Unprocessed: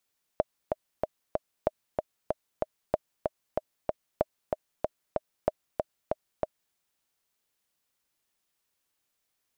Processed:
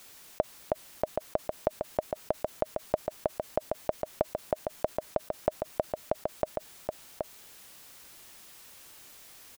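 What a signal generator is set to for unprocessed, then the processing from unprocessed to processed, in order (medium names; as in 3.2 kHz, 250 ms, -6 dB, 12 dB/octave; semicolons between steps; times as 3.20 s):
metronome 189 bpm, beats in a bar 4, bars 5, 621 Hz, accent 3.5 dB -10 dBFS
on a send: delay 775 ms -9.5 dB; on the sum: level flattener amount 50%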